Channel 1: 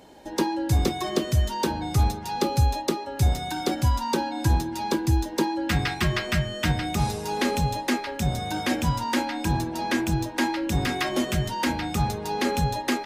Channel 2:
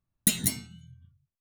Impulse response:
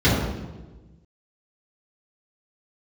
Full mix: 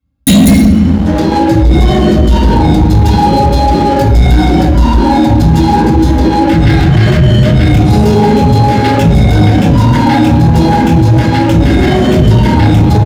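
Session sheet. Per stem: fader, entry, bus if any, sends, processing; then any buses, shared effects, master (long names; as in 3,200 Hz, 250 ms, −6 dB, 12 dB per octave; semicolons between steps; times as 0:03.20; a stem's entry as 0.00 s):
−2.0 dB, 0.80 s, send −6.5 dB, compressor whose output falls as the input rises −29 dBFS, ratio −1; micro pitch shift up and down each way 42 cents
−1.0 dB, 0.00 s, send −4 dB, comb filter 3.7 ms, depth 97%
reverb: on, RT60 1.2 s, pre-delay 3 ms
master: leveller curve on the samples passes 3; brickwall limiter −1 dBFS, peak gain reduction 9.5 dB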